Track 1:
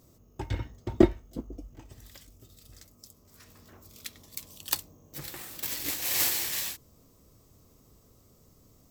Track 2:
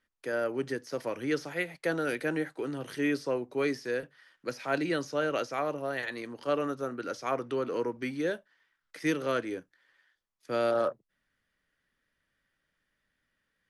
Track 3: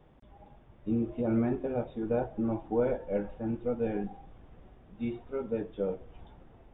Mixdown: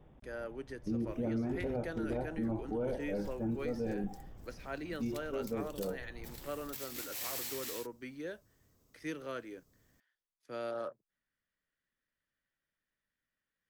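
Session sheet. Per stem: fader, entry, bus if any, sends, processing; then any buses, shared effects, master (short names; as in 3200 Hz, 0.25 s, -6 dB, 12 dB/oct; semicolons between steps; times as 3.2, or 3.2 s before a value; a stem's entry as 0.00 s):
-11.0 dB, 1.10 s, no send, dry
-11.5 dB, 0.00 s, no send, dry
-4.0 dB, 0.00 s, no send, low shelf 430 Hz +5.5 dB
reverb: off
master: limiter -28 dBFS, peak gain reduction 12 dB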